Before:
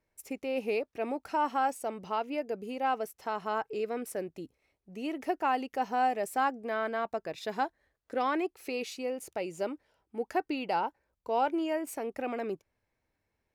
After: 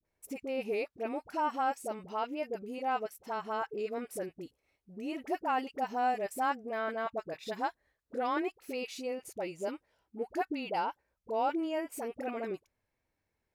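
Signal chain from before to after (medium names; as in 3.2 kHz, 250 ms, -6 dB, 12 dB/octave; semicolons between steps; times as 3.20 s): phase dispersion highs, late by 49 ms, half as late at 700 Hz; vibrato 0.94 Hz 31 cents; trim -2.5 dB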